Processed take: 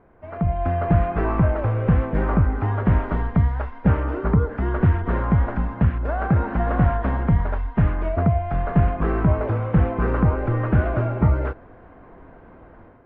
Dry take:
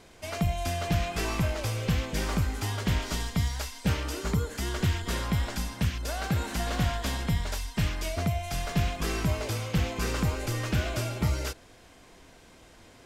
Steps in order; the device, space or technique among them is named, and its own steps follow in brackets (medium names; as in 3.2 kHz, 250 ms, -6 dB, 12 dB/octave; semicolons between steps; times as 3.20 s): action camera in a waterproof case (low-pass 1.5 kHz 24 dB/octave; level rider gain up to 9.5 dB; AAC 48 kbps 44.1 kHz)